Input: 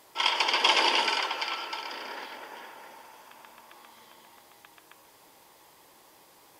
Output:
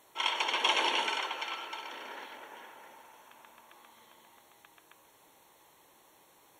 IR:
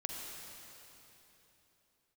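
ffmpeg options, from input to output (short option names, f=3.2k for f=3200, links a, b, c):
-af "asuperstop=centerf=4900:order=12:qfactor=5.5,volume=-5dB"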